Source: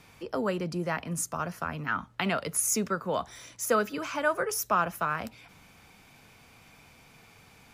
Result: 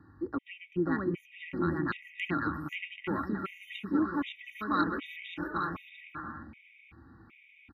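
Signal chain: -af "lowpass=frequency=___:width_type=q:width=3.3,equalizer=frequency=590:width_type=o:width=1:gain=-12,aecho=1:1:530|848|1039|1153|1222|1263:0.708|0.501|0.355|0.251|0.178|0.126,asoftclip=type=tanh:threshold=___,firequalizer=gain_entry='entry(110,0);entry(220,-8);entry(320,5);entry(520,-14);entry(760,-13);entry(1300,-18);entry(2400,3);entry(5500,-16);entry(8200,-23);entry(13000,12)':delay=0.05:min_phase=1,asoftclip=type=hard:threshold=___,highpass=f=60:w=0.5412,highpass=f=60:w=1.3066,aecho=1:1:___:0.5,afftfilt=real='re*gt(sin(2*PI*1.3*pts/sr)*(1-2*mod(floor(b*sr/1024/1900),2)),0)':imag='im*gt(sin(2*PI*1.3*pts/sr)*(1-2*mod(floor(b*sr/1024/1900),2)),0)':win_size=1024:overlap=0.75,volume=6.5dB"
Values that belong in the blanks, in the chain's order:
1.3k, -10.5dB, -23.5dB, 3.6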